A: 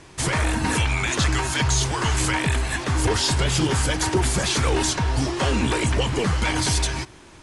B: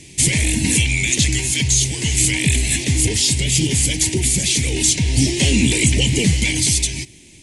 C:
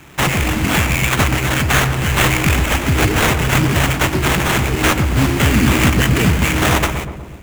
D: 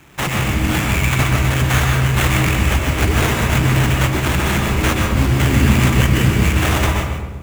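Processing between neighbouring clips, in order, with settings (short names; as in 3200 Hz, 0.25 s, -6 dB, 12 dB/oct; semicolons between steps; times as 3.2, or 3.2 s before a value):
EQ curve 270 Hz 0 dB, 870 Hz -14 dB, 1300 Hz -29 dB, 2100 Hz +7 dB, 5000 Hz +7 dB, 7200 Hz +13 dB; vocal rider 0.5 s; bell 180 Hz +6.5 dB 2.6 oct; gain -1 dB
AGC gain up to 5 dB; sample-rate reducer 4800 Hz, jitter 20%; darkening echo 0.122 s, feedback 67%, low-pass 960 Hz, level -7 dB
reverb RT60 0.80 s, pre-delay 0.118 s, DRR 1 dB; gain -5 dB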